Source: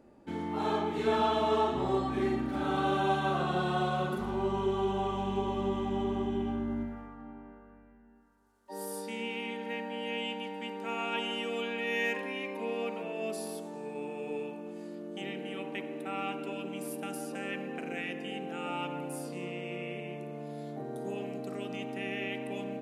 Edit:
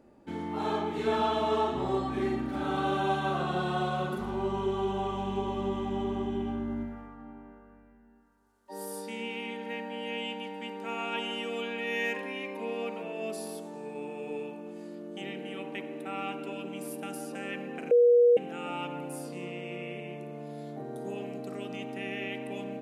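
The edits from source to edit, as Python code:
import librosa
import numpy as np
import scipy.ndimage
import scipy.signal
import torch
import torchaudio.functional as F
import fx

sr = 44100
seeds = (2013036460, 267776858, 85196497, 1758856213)

y = fx.edit(x, sr, fx.bleep(start_s=17.91, length_s=0.46, hz=481.0, db=-16.5), tone=tone)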